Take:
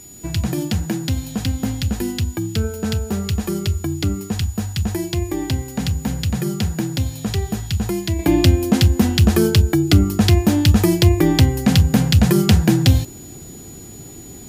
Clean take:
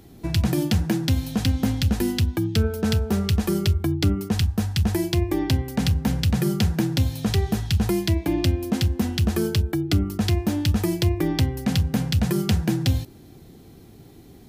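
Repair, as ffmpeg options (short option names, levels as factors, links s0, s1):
-af "bandreject=f=6900:w=30,agate=range=0.0891:threshold=0.0398,asetnsamples=n=441:p=0,asendcmd='8.19 volume volume -8dB',volume=1"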